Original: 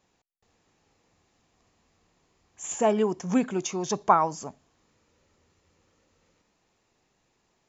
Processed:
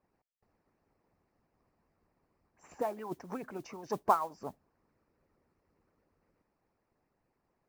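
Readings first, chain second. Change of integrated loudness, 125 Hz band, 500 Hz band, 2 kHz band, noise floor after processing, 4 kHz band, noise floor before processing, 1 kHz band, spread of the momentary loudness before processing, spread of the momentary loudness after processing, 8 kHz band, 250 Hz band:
-9.5 dB, -14.0 dB, -10.5 dB, -11.0 dB, -81 dBFS, -16.0 dB, -73 dBFS, -8.0 dB, 17 LU, 15 LU, n/a, -16.0 dB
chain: running mean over 13 samples; in parallel at 0 dB: compressor, threshold -29 dBFS, peak gain reduction 14 dB; on the sum: harmonic-percussive split harmonic -17 dB; modulation noise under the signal 24 dB; gain -7 dB

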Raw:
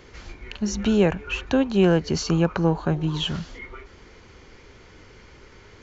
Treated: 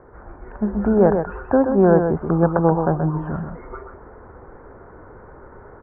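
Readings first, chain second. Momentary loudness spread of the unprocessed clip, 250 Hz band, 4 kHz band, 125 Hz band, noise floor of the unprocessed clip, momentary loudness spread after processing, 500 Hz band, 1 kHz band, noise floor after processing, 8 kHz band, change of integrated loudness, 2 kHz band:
19 LU, +3.0 dB, under -40 dB, +2.5 dB, -50 dBFS, 17 LU, +6.5 dB, +8.5 dB, -44 dBFS, n/a, +4.0 dB, -1.5 dB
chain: bell 720 Hz +8.5 dB 1.4 oct; AGC gain up to 4.5 dB; steep low-pass 1600 Hz 48 dB/oct; echo 0.128 s -6.5 dB; gain -1 dB

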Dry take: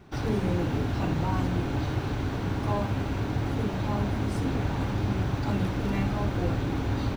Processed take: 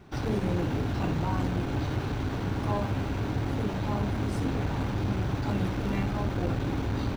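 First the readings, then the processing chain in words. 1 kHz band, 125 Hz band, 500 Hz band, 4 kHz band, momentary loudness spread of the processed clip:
-1.0 dB, -1.5 dB, -1.0 dB, -1.0 dB, 2 LU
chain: core saturation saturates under 180 Hz

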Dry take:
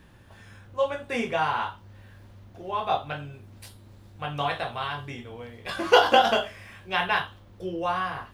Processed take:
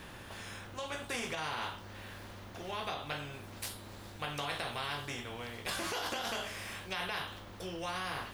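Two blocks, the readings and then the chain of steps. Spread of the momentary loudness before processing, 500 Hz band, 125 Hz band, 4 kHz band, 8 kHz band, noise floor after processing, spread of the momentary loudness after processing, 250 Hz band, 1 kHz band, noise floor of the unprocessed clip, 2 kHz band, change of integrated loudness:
19 LU, -15.5 dB, -6.5 dB, -8.0 dB, +2.5 dB, -49 dBFS, 11 LU, -9.5 dB, -14.5 dB, -52 dBFS, -9.5 dB, -13.0 dB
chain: compressor 2.5:1, threshold -27 dBFS, peak gain reduction 10.5 dB; limiter -22 dBFS, peak gain reduction 8 dB; spectral compressor 2:1

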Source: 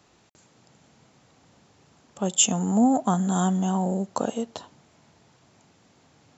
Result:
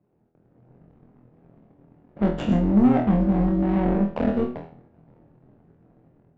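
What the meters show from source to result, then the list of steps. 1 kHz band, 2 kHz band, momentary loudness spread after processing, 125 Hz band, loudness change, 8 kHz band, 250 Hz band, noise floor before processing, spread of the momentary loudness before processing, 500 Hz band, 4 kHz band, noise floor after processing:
-3.0 dB, +1.5 dB, 9 LU, +4.0 dB, +2.0 dB, n/a, +4.0 dB, -61 dBFS, 11 LU, +3.5 dB, under -10 dB, -63 dBFS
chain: median filter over 41 samples; AGC gain up to 7.5 dB; HPF 100 Hz 24 dB/oct; treble ducked by the level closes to 1600 Hz, closed at -13 dBFS; soft clip -14.5 dBFS, distortion -11 dB; low shelf 270 Hz +5.5 dB; on a send: flutter echo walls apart 10.5 m, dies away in 0.3 s; on the sum: AM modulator 140 Hz, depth 40%; sample leveller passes 1; flutter echo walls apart 4.2 m, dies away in 0.35 s; low-pass opened by the level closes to 1800 Hz, open at -7.5 dBFS; high shelf 4900 Hz -6 dB; gain -2.5 dB

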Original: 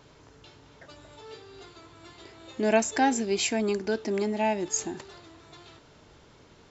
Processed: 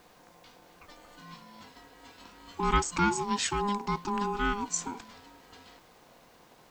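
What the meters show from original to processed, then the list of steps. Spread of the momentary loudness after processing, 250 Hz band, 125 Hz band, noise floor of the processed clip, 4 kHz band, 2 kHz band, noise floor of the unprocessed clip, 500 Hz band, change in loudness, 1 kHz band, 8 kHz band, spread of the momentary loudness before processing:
21 LU, -4.5 dB, +4.0 dB, -59 dBFS, -2.0 dB, -1.5 dB, -56 dBFS, -9.0 dB, -3.0 dB, +0.5 dB, n/a, 21 LU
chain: added noise white -66 dBFS; ring modulator 610 Hz

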